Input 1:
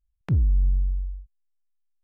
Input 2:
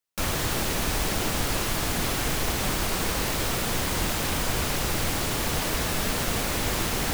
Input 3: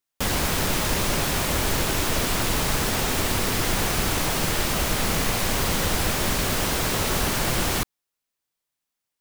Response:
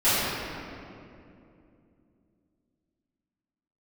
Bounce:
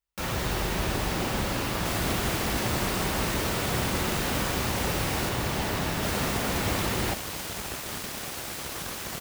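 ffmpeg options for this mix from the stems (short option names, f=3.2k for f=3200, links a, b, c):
-filter_complex "[0:a]volume=-14dB[a];[1:a]equalizer=f=10k:w=0.4:g=-5,volume=-4dB,asplit=2[b][c];[c]volume=-18.5dB[d];[2:a]aeval=exprs='abs(val(0))':c=same,adelay=1650,volume=-7.5dB,asplit=3[e][f][g];[e]atrim=end=5.29,asetpts=PTS-STARTPTS,afade=t=out:st=5.286:d=0.004:c=hsin[h];[f]atrim=start=5.29:end=6.03,asetpts=PTS-STARTPTS,volume=0[i];[g]atrim=start=6.03,asetpts=PTS-STARTPTS,afade=t=in:d=0.004:c=hsin[j];[h][i][j]concat=n=3:v=0:a=1[k];[3:a]atrim=start_sample=2205[l];[d][l]afir=irnorm=-1:irlink=0[m];[a][b][k][m]amix=inputs=4:normalize=0,highpass=46"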